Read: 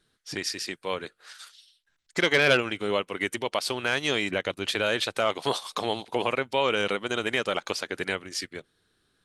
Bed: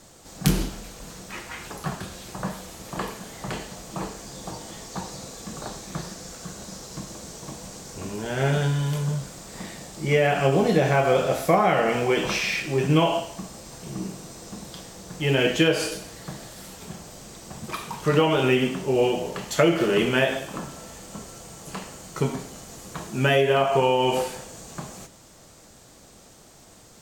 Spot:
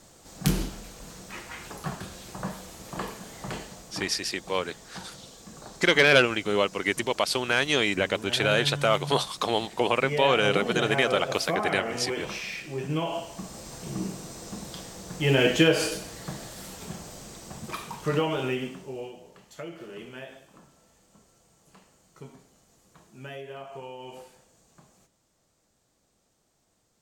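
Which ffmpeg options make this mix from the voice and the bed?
-filter_complex "[0:a]adelay=3650,volume=2.5dB[a];[1:a]volume=6dB,afade=t=out:st=3.57:d=0.45:silence=0.501187,afade=t=in:st=13.05:d=0.56:silence=0.334965,afade=t=out:st=17.04:d=2.09:silence=0.0944061[b];[a][b]amix=inputs=2:normalize=0"

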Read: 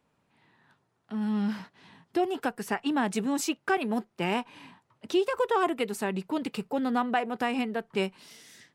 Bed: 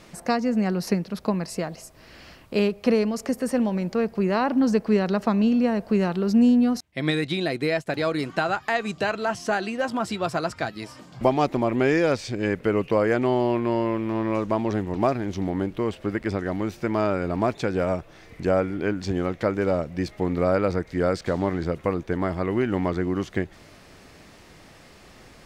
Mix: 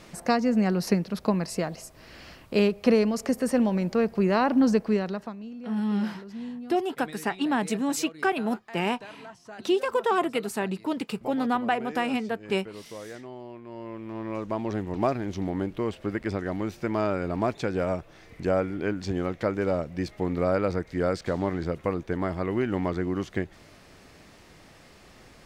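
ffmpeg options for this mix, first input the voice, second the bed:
-filter_complex "[0:a]adelay=4550,volume=1.5dB[a];[1:a]volume=16.5dB,afade=t=out:st=4.65:d=0.71:silence=0.105925,afade=t=in:st=13.66:d=1.34:silence=0.149624[b];[a][b]amix=inputs=2:normalize=0"

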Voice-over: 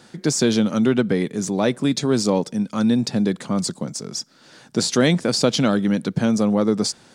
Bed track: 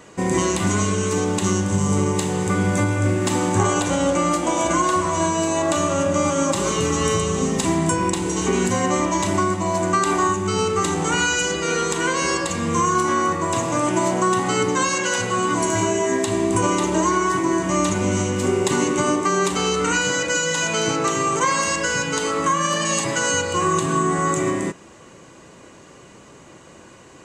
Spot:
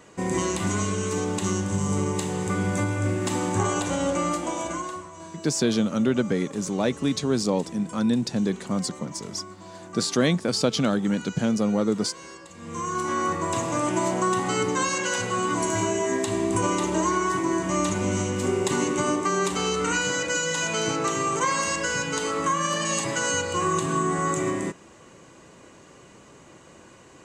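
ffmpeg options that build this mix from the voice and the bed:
-filter_complex "[0:a]adelay=5200,volume=-4.5dB[a];[1:a]volume=11.5dB,afade=t=out:st=4.25:d=0.85:silence=0.158489,afade=t=in:st=12.54:d=0.77:silence=0.141254[b];[a][b]amix=inputs=2:normalize=0"

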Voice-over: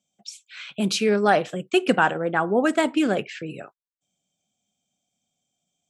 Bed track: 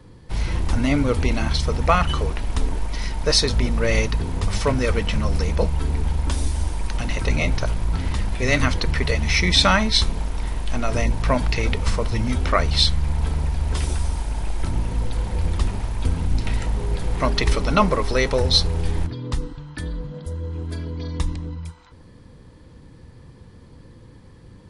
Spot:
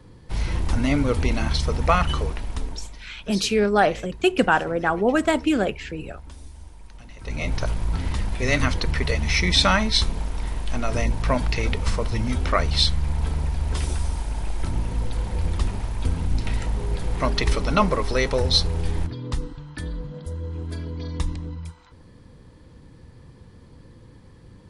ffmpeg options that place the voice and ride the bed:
-filter_complex "[0:a]adelay=2500,volume=0.5dB[a];[1:a]volume=15.5dB,afade=t=out:st=2.12:d=0.93:silence=0.133352,afade=t=in:st=7.18:d=0.44:silence=0.141254[b];[a][b]amix=inputs=2:normalize=0"

